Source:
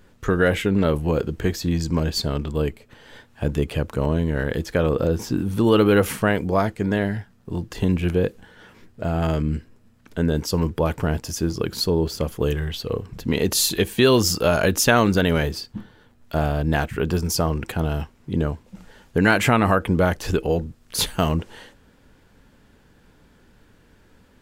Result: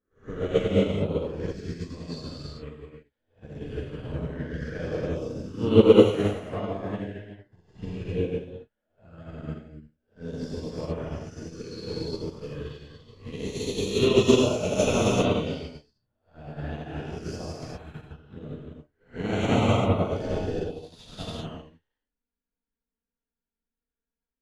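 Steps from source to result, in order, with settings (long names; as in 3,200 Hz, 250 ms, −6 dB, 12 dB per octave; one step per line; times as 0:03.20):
peak hold with a rise ahead of every peak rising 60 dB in 0.80 s
flanger swept by the level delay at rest 4.6 ms, full sweep at −15 dBFS
high-frequency loss of the air 90 metres
reverb whose tail is shaped and stops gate 430 ms flat, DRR −7.5 dB
expander for the loud parts 2.5 to 1, over −32 dBFS
level −4.5 dB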